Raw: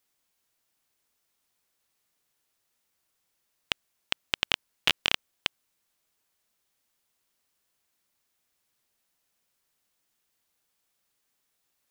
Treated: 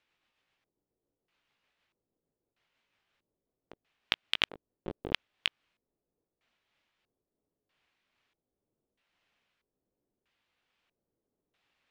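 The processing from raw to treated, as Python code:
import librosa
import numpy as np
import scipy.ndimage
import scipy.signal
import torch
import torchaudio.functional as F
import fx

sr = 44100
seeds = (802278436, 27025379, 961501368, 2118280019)

y = fx.pitch_glide(x, sr, semitones=2.5, runs='ending unshifted')
y = (np.mod(10.0 ** (7.5 / 20.0) * y + 1.0, 2.0) - 1.0) / 10.0 ** (7.5 / 20.0)
y = fx.filter_lfo_lowpass(y, sr, shape='square', hz=0.78, low_hz=420.0, high_hz=2800.0, q=1.5)
y = y * 10.0 ** (4.0 / 20.0)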